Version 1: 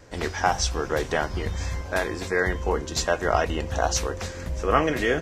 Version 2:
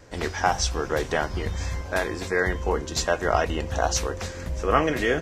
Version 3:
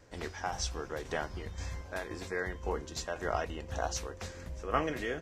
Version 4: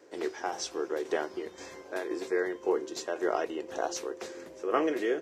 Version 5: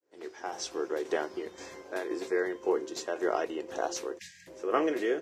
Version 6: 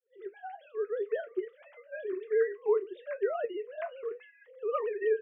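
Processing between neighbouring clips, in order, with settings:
no audible change
tremolo saw down 1.9 Hz, depth 50%; trim -9 dB
resonant high-pass 360 Hz, resonance Q 3.9
fade-in on the opening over 0.72 s; spectral selection erased 4.19–4.47 s, 210–1600 Hz
formants replaced by sine waves; flange 0.63 Hz, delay 7.2 ms, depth 4 ms, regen +65%; trim +3 dB

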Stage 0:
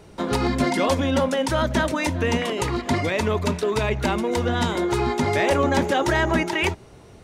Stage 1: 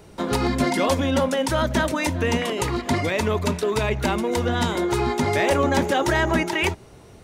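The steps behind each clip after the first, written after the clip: treble shelf 12 kHz +9 dB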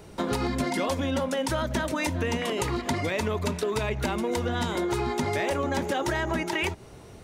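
compression, threshold -24 dBFS, peak gain reduction 8.5 dB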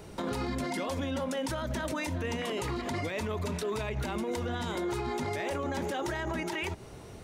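peak limiter -25 dBFS, peak gain reduction 10.5 dB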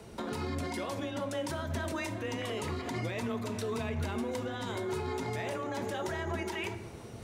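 reverse; upward compressor, threshold -39 dBFS; reverse; frequency shift +20 Hz; reverberation RT60 1.3 s, pre-delay 4 ms, DRR 8 dB; trim -3 dB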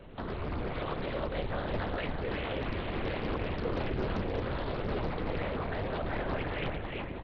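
feedback delay 347 ms, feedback 52%, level -3.5 dB; LPC vocoder at 8 kHz whisper; loudspeaker Doppler distortion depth 0.89 ms

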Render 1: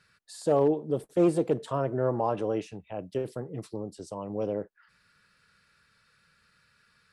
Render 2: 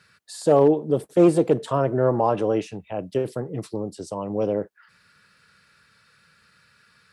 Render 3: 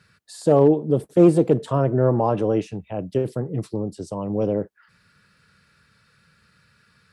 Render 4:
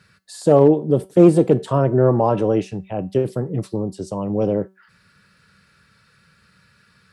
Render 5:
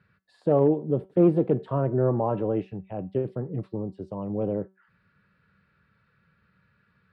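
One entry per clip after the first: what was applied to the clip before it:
high-pass 73 Hz; trim +7 dB
bass shelf 320 Hz +9.5 dB; trim -2.5 dB
feedback comb 190 Hz, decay 0.3 s, harmonics all, mix 50%; trim +8 dB
distance through air 460 m; trim -7 dB

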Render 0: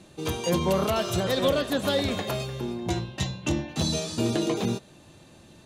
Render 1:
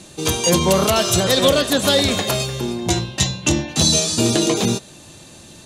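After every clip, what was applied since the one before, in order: peaking EQ 7.8 kHz +10.5 dB 2 oct; trim +7.5 dB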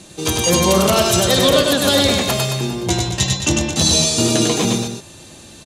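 loudspeakers at several distances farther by 34 m -3 dB, 75 m -9 dB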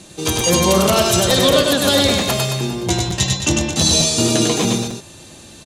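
crackling interface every 0.90 s, samples 256, repeat, from 0.40 s

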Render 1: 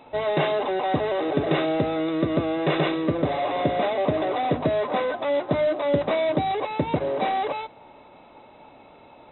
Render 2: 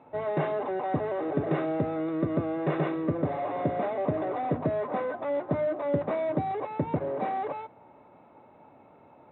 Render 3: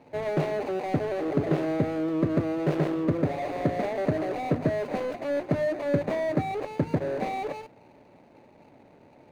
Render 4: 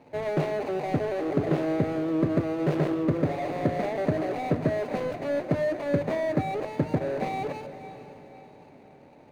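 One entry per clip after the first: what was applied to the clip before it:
Chebyshev band-pass 100–1600 Hz, order 2; bass shelf 420 Hz +4.5 dB; trim -6.5 dB
median filter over 41 samples; trim +3.5 dB
echo that smears into a reverb 513 ms, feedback 43%, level -13 dB

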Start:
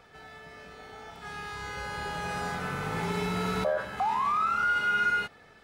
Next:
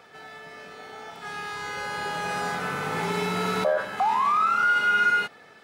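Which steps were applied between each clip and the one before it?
Bessel high-pass 210 Hz, order 2; trim +5 dB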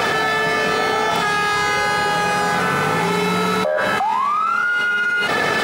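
level flattener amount 100%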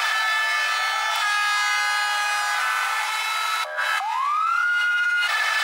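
Bessel high-pass 1.3 kHz, order 8

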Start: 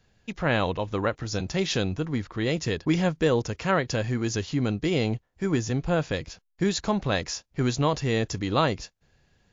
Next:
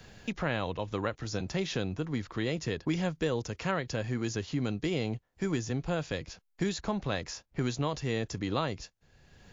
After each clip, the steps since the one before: three bands compressed up and down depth 70%; trim -7 dB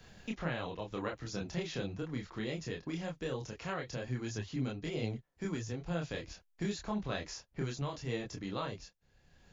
gain riding within 3 dB 0.5 s; chorus voices 4, 0.77 Hz, delay 27 ms, depth 3.8 ms; trim -3 dB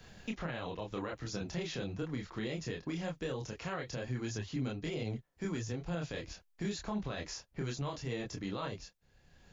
peak limiter -29 dBFS, peak gain reduction 9.5 dB; trim +1.5 dB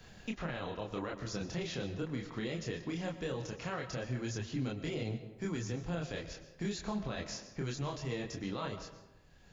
reverberation RT60 1.1 s, pre-delay 80 ms, DRR 10.5 dB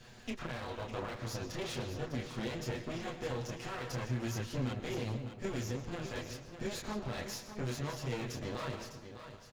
comb filter that takes the minimum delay 8.2 ms; on a send: delay 604 ms -10 dB; on the sum: trim +1.5 dB

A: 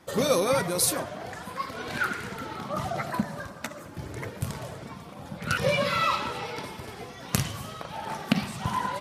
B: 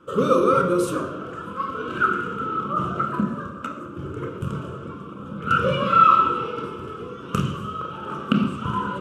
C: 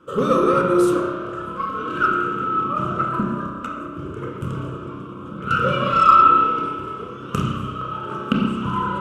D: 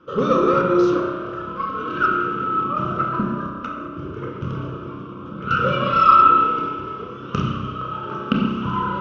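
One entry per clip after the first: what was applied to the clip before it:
FFT filter 140 Hz 0 dB, 480 Hz +7 dB, 750 Hz -16 dB, 1.3 kHz +14 dB, 1.9 kHz -17 dB, 2.9 kHz +3 dB, 4.3 kHz -17 dB, 7.9 kHz -9 dB, 11 kHz -17 dB; on a send at -2.5 dB: reverberation RT60 0.80 s, pre-delay 22 ms
Chebyshev shaper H 8 -34 dB, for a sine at -2.5 dBFS; spring tank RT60 1.6 s, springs 31 ms, chirp 65 ms, DRR 2.5 dB
steep low-pass 6.1 kHz 72 dB/octave

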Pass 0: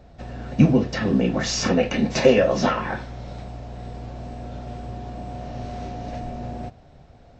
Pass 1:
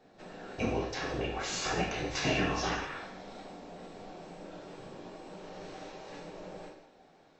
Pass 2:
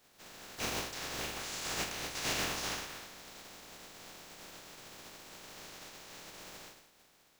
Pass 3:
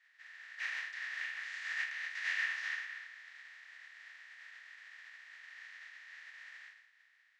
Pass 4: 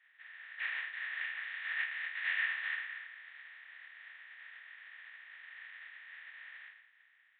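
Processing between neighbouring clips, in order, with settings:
spectral gate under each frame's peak -10 dB weak; gated-style reverb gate 270 ms falling, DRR -1 dB; trim -7.5 dB
spectral contrast reduction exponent 0.25; trim -5 dB
ladder band-pass 1.9 kHz, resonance 85%; trim +6 dB
resampled via 8 kHz; trim +1.5 dB

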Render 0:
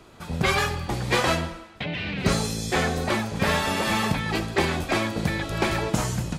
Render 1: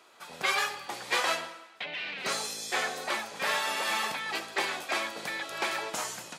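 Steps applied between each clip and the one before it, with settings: Bessel high-pass 790 Hz, order 2; trim -3 dB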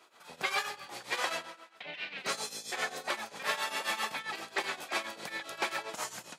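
tremolo triangle 7.5 Hz, depth 85%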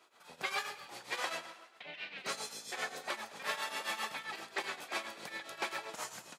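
frequency-shifting echo 105 ms, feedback 53%, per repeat +32 Hz, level -16 dB; trim -4.5 dB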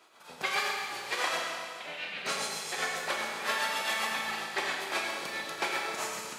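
Schroeder reverb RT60 2 s, combs from 28 ms, DRR 0 dB; trim +4.5 dB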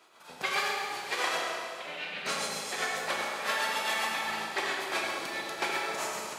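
tape echo 73 ms, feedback 87%, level -6 dB, low-pass 1.4 kHz

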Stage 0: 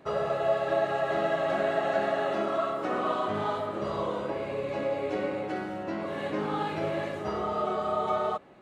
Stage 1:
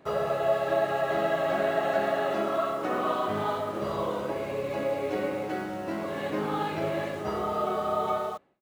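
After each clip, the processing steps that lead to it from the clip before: fade out at the end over 0.55 s; in parallel at -10 dB: bit crusher 7-bit; on the sum: trim -1.5 dB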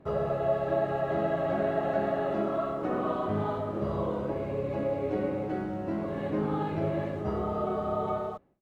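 tilt EQ -3.5 dB/octave; trim -4.5 dB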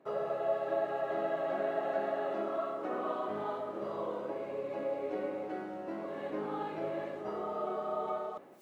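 high-pass 350 Hz 12 dB/octave; reverse; upward compressor, threshold -35 dBFS; reverse; trim -4 dB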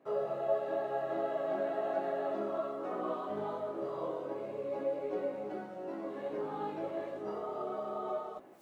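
dynamic bell 2 kHz, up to -4 dB, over -52 dBFS, Q 0.85; chorus voices 4, 0.34 Hz, delay 18 ms, depth 4 ms; trim +2.5 dB

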